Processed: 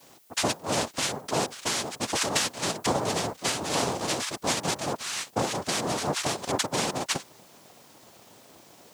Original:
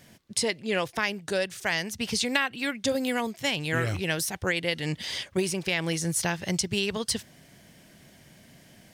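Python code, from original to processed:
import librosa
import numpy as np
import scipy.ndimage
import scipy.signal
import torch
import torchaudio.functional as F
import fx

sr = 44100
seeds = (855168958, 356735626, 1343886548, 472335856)

y = fx.noise_vocoder(x, sr, seeds[0], bands=2)
y = fx.dmg_noise_colour(y, sr, seeds[1], colour='blue', level_db=-60.0)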